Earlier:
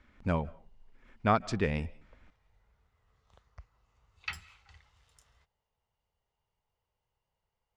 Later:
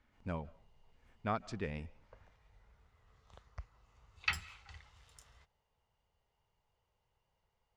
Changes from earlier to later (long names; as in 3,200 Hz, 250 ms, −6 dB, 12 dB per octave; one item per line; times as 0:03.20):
speech −10.0 dB
background +4.0 dB